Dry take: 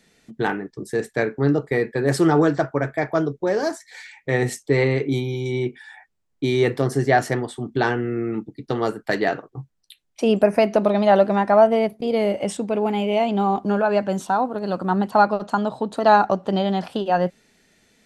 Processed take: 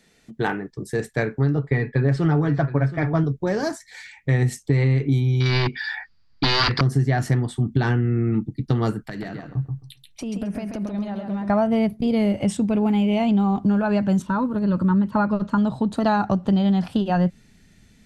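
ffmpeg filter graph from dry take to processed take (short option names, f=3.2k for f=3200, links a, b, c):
-filter_complex "[0:a]asettb=1/sr,asplit=3[a][b][c];[a]atrim=end=1.554[d];[b]atrim=start=1.55:end=3.24,asetpts=PTS-STARTPTS,afade=t=in:d=0.004:c=qsin,afade=t=out:st=1.686:d=0.004:c=qsin,lowpass=3.7k,aecho=1:1:7.2:0.53,atrim=end_sample=74529,aecho=1:1:722:0.168,atrim=end_sample=74529[e];[c]atrim=start=3.236[f];[d][e]acrossfade=d=0.004:c1=hsin:c2=qsin[g];[g][f]acrossfade=d=0.004:c1=qsin:c2=hsin,asettb=1/sr,asplit=3[h][i][j];[h]atrim=end=5.404[k];[i]atrim=start=5.4:end=6.81,asetpts=PTS-STARTPTS,afade=t=in:d=0.004:c=qsin,afade=t=out:st=1.406:d=0.004:c=qsin,aeval=exprs='0.1*(abs(mod(val(0)/0.1+3,4)-2)-1)':c=same,lowpass=f=4.7k:t=q:w=15,equalizer=f=1.5k:t=o:w=2.3:g=14[l];[j]atrim=start=6.806[m];[k][l]acrossfade=d=0.004:c1=hsin:c2=qsin[n];[n][m]acrossfade=d=0.004:c1=qsin:c2=hsin,asettb=1/sr,asplit=3[o][p][q];[o]atrim=end=9.004[r];[p]atrim=start=9:end=11.5,asetpts=PTS-STARTPTS,afade=t=in:d=0.004:c=qsin,afade=t=out:st=2.496:d=0.004:c=qsin,acompressor=threshold=-31dB:ratio=5:attack=3.2:release=140:knee=1:detection=peak,aecho=1:1:134|268|402:0.562|0.0956|0.0163,atrim=end_sample=110250[s];[q]atrim=start=11.496[t];[r][s]acrossfade=d=0.004:c1=hsin:c2=qsin[u];[u][t]acrossfade=d=0.004:c1=qsin:c2=hsin,asettb=1/sr,asplit=3[v][w][x];[v]atrim=end=14.224[y];[w]atrim=start=14.22:end=15.58,asetpts=PTS-STARTPTS,afade=t=in:d=0.004:c=qsin,afade=t=out:st=1.356:d=0.004:c=qsin,acrossover=split=2900[z][aa];[aa]acompressor=threshold=-55dB:ratio=4:attack=1:release=60[ab];[z][ab]amix=inputs=2:normalize=0,asuperstop=centerf=740:order=8:qfactor=4.3[ac];[x]atrim=start=15.576[ad];[y][ac]acrossfade=d=0.004:c1=hsin:c2=qsin[ae];[ae][ad]acrossfade=d=0.004:c1=qsin:c2=hsin,asubboost=boost=7.5:cutoff=170,acompressor=threshold=-16dB:ratio=6"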